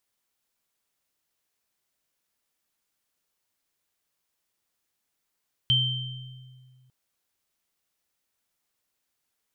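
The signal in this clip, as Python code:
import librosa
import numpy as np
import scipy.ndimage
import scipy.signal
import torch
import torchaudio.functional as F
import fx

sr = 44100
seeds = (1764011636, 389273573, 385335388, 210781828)

y = fx.additive_free(sr, length_s=1.2, hz=128.0, level_db=-23.5, upper_db=(6.0,), decay_s=2.1, upper_decays_s=(1.14,), upper_hz=(3120.0,))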